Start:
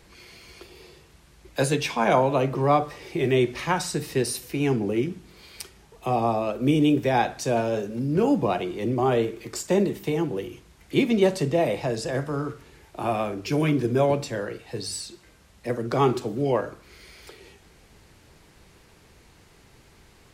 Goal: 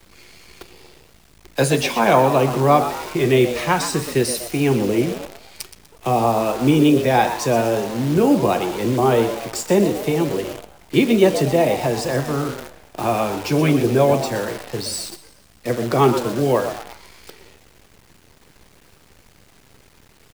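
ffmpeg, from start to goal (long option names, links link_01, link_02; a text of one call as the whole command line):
ffmpeg -i in.wav -filter_complex "[0:a]asplit=6[link_01][link_02][link_03][link_04][link_05][link_06];[link_02]adelay=122,afreqshift=110,volume=-11dB[link_07];[link_03]adelay=244,afreqshift=220,volume=-17.9dB[link_08];[link_04]adelay=366,afreqshift=330,volume=-24.9dB[link_09];[link_05]adelay=488,afreqshift=440,volume=-31.8dB[link_10];[link_06]adelay=610,afreqshift=550,volume=-38.7dB[link_11];[link_01][link_07][link_08][link_09][link_10][link_11]amix=inputs=6:normalize=0,acrusher=bits=7:dc=4:mix=0:aa=0.000001,volume=5.5dB" out.wav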